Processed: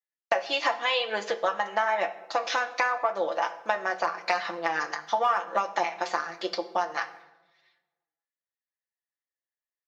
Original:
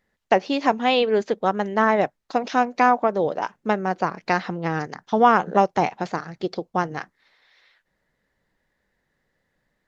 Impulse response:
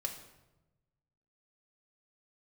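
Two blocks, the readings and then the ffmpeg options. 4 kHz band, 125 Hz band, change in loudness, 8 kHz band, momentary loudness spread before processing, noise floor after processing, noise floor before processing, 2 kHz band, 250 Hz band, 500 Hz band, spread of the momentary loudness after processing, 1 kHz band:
+0.5 dB, under -20 dB, -6.0 dB, no reading, 11 LU, under -85 dBFS, -75 dBFS, -1.5 dB, -18.0 dB, -7.5 dB, 5 LU, -6.0 dB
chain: -filter_complex "[0:a]aecho=1:1:5.9:0.76,asplit=2[s0][s1];[s1]volume=2.37,asoftclip=hard,volume=0.422,volume=0.422[s2];[s0][s2]amix=inputs=2:normalize=0,agate=range=0.0224:threshold=0.00708:ratio=3:detection=peak,highpass=780,flanger=delay=9.3:depth=4.2:regen=55:speed=0.9:shape=sinusoidal,acompressor=threshold=0.0447:ratio=6,asplit=2[s3][s4];[1:a]atrim=start_sample=2205[s5];[s4][s5]afir=irnorm=-1:irlink=0,volume=0.891[s6];[s3][s6]amix=inputs=2:normalize=0"

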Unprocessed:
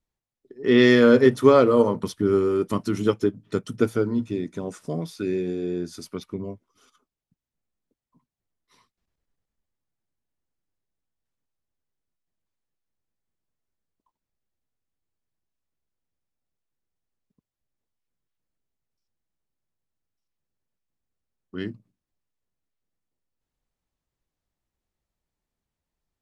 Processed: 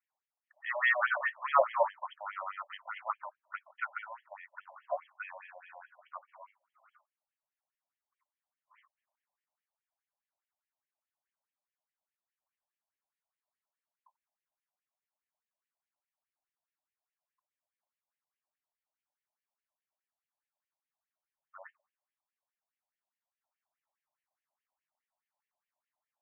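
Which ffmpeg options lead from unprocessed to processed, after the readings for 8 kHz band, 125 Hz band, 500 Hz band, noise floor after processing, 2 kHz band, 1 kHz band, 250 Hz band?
under -30 dB, under -40 dB, -17.5 dB, under -85 dBFS, -3.0 dB, -3.0 dB, under -40 dB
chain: -filter_complex "[0:a]asplit=2[s0][s1];[s1]volume=12.6,asoftclip=hard,volume=0.0794,volume=0.596[s2];[s0][s2]amix=inputs=2:normalize=0,highshelf=f=2100:g=-9,afftfilt=real='re*between(b*sr/1024,740*pow(2400/740,0.5+0.5*sin(2*PI*4.8*pts/sr))/1.41,740*pow(2400/740,0.5+0.5*sin(2*PI*4.8*pts/sr))*1.41)':imag='im*between(b*sr/1024,740*pow(2400/740,0.5+0.5*sin(2*PI*4.8*pts/sr))/1.41,740*pow(2400/740,0.5+0.5*sin(2*PI*4.8*pts/sr))*1.41)':win_size=1024:overlap=0.75,volume=1.26"

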